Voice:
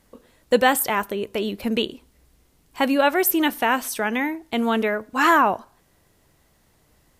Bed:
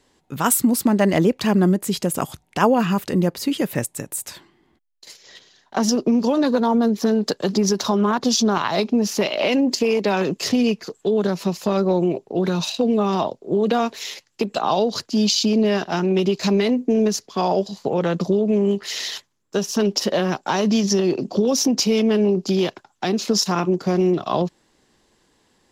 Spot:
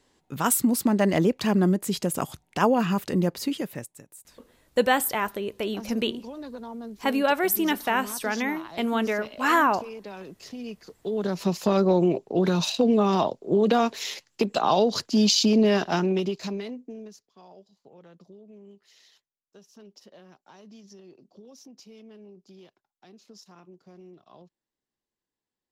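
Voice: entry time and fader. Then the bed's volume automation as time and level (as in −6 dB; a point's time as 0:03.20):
4.25 s, −4.0 dB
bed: 0:03.44 −4.5 dB
0:04.09 −20 dB
0:10.55 −20 dB
0:11.53 −1.5 dB
0:15.94 −1.5 dB
0:17.37 −30.5 dB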